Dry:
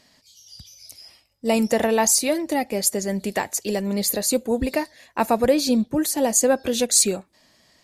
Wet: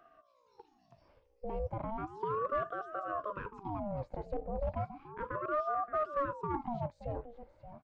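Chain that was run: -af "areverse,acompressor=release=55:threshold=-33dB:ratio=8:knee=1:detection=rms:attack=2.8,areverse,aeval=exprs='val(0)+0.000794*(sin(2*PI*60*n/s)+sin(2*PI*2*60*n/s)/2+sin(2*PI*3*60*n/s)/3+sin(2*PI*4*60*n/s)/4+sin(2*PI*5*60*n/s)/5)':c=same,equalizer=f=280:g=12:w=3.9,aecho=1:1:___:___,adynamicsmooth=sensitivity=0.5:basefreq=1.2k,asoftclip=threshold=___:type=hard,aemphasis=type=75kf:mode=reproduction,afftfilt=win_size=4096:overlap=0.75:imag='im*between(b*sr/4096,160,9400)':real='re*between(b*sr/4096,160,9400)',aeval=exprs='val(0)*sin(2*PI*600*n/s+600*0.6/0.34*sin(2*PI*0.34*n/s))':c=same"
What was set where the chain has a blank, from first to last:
575, 0.237, -25.5dB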